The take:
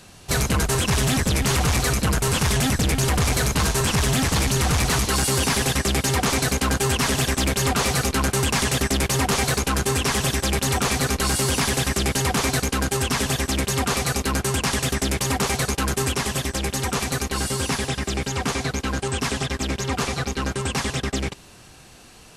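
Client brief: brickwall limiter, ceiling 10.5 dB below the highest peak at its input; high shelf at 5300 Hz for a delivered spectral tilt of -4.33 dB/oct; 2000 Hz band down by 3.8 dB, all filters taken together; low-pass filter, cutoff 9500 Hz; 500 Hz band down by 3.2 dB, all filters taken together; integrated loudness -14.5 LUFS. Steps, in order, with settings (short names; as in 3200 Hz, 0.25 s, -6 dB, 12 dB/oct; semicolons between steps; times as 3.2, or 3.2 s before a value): LPF 9500 Hz; bell 500 Hz -4 dB; bell 2000 Hz -3.5 dB; high shelf 5300 Hz -7.5 dB; gain +18.5 dB; limiter -8 dBFS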